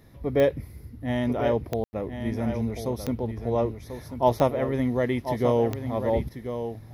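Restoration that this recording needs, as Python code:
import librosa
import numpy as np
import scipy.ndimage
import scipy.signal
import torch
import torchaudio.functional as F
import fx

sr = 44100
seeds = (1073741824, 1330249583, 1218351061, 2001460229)

y = fx.fix_declick_ar(x, sr, threshold=10.0)
y = fx.fix_ambience(y, sr, seeds[0], print_start_s=0.53, print_end_s=1.03, start_s=1.84, end_s=1.93)
y = fx.fix_echo_inverse(y, sr, delay_ms=1040, level_db=-9.0)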